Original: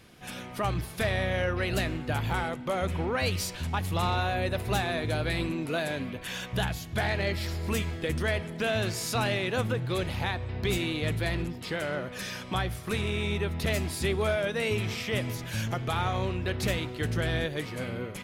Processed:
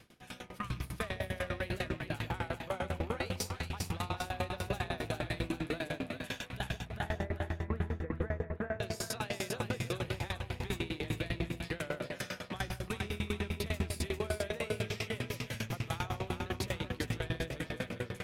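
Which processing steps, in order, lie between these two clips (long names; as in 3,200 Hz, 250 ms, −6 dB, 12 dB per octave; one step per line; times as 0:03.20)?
loose part that buzzes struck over −34 dBFS, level −32 dBFS
0:00.49–0:00.89: healed spectral selection 330–910 Hz
0:06.73–0:08.80: Butterworth low-pass 1,800 Hz 36 dB per octave
brickwall limiter −22 dBFS, peak gain reduction 5 dB
echo with a time of its own for lows and highs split 750 Hz, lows 159 ms, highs 398 ms, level −4 dB
tremolo with a ramp in dB decaying 10 Hz, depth 23 dB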